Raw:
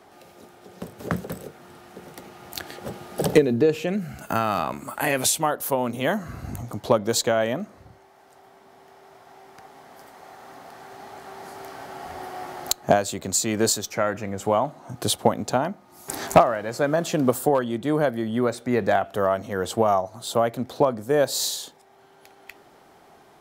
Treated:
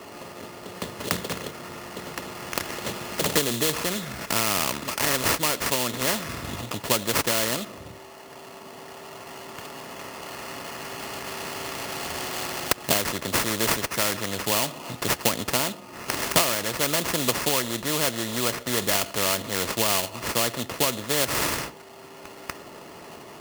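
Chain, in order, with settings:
sample-rate reduction 3,700 Hz, jitter 20%
notch comb filter 780 Hz
every bin compressed towards the loudest bin 2 to 1
level +2.5 dB

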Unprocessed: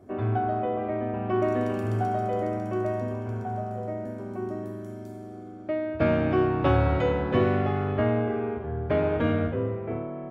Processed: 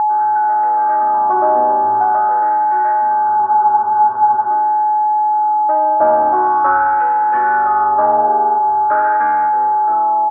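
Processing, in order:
thirty-one-band graphic EQ 400 Hz +4 dB, 800 Hz +4 dB, 2,000 Hz −11 dB
automatic gain control gain up to 8 dB
comb filter 3.3 ms, depth 43%
in parallel at −11 dB: wave folding −13.5 dBFS
on the sum: LFO wah 0.45 Hz 790–1,900 Hz, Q 2.9
steady tone 850 Hz −17 dBFS
high shelf with overshoot 2,200 Hz −13.5 dB, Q 3
frozen spectrum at 0:03.40, 1.07 s
level +3.5 dB

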